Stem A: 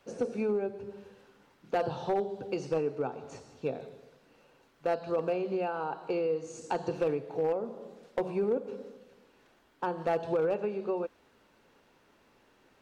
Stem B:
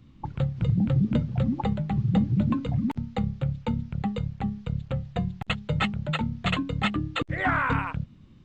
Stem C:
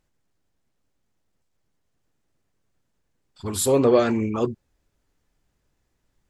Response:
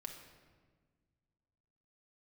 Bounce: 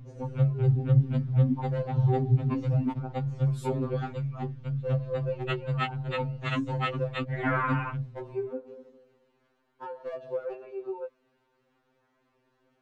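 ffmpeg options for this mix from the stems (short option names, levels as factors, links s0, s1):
-filter_complex "[0:a]highshelf=f=8400:g=8,volume=0.631[s0];[1:a]aeval=exprs='val(0)+0.00794*(sin(2*PI*60*n/s)+sin(2*PI*2*60*n/s)/2+sin(2*PI*3*60*n/s)/3+sin(2*PI*4*60*n/s)/4+sin(2*PI*5*60*n/s)/5)':c=same,volume=1.06[s1];[2:a]volume=0.266[s2];[s0][s1][s2]amix=inputs=3:normalize=0,aemphasis=mode=reproduction:type=75kf,afftfilt=real='re*2.45*eq(mod(b,6),0)':imag='im*2.45*eq(mod(b,6),0)':win_size=2048:overlap=0.75"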